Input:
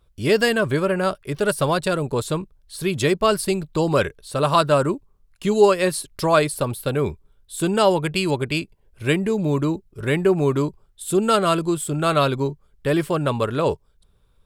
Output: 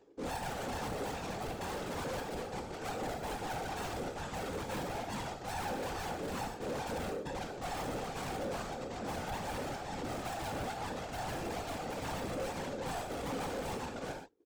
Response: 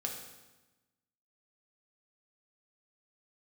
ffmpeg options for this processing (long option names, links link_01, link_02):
-filter_complex "[0:a]aecho=1:1:394:0.266,alimiter=limit=-10.5dB:level=0:latency=1:release=364,aecho=1:1:2.1:0.56,agate=range=-33dB:threshold=-36dB:ratio=3:detection=peak,acompressor=mode=upward:threshold=-30dB:ratio=2.5,aresample=16000,acrusher=samples=17:mix=1:aa=0.000001:lfo=1:lforange=17:lforate=2.3,aresample=44100,asoftclip=type=hard:threshold=-28dB,equalizer=frequency=180:width=2.5:gain=-9,aeval=exprs='val(0)*sin(2*PI*380*n/s)':channel_layout=same[link_01];[1:a]atrim=start_sample=2205,atrim=end_sample=6615[link_02];[link_01][link_02]afir=irnorm=-1:irlink=0,afftfilt=real='hypot(re,im)*cos(2*PI*random(0))':imag='hypot(re,im)*sin(2*PI*random(1))':win_size=512:overlap=0.75,asoftclip=type=tanh:threshold=-34dB,volume=2.5dB"